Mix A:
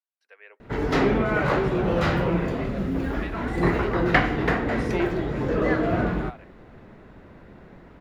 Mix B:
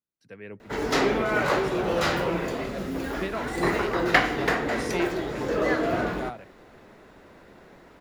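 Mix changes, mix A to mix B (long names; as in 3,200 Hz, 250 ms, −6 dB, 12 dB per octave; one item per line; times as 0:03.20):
speech: remove Bessel high-pass filter 870 Hz, order 8
master: add bass and treble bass −10 dB, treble +11 dB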